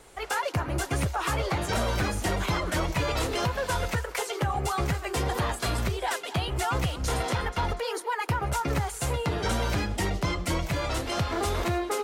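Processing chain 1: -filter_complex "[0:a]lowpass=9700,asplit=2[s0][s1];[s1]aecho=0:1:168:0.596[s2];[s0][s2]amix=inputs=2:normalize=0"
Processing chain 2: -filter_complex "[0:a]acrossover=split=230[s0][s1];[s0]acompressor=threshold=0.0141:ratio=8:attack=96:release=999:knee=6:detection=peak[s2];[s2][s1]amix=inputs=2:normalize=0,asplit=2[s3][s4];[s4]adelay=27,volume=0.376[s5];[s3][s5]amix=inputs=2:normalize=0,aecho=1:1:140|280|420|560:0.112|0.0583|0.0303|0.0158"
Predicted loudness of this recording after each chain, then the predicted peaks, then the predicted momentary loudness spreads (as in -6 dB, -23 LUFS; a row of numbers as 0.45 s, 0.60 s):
-27.5 LUFS, -29.5 LUFS; -15.5 dBFS, -15.0 dBFS; 2 LU, 2 LU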